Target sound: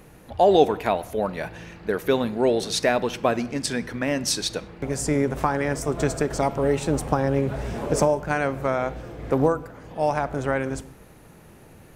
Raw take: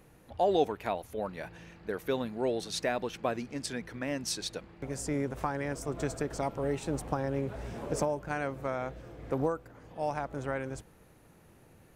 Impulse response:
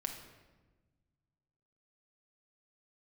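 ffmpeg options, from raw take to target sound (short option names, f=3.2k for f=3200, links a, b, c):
-filter_complex "[0:a]asplit=2[a][b];[1:a]atrim=start_sample=2205,afade=t=out:st=0.28:d=0.01,atrim=end_sample=12789,asetrate=48510,aresample=44100[c];[b][c]afir=irnorm=-1:irlink=0,volume=-7.5dB[d];[a][d]amix=inputs=2:normalize=0,volume=7.5dB"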